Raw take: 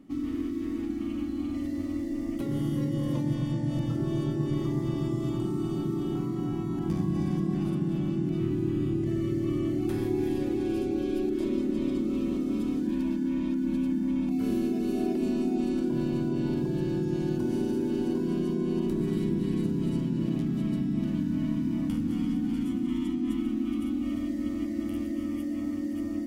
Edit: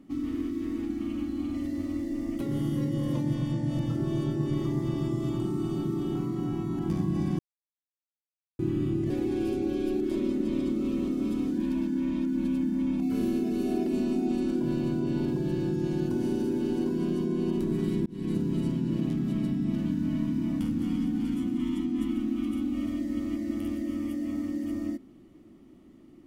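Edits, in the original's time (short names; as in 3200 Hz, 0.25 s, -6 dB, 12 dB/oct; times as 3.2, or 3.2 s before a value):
7.39–8.59 mute
9.1–10.39 cut
19.35–19.63 fade in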